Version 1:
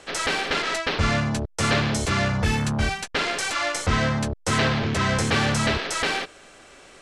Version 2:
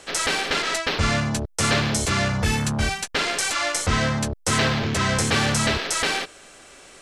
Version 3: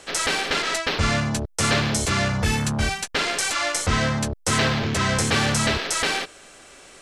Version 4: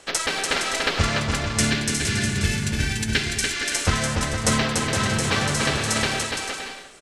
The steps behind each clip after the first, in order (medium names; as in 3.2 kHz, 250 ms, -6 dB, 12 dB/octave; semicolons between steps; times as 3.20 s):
treble shelf 6.1 kHz +9.5 dB
no audible change
time-frequency box 1.47–3.76 s, 450–1400 Hz -11 dB; transient shaper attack +8 dB, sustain +3 dB; bouncing-ball echo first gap 290 ms, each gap 0.6×, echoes 5; trim -4 dB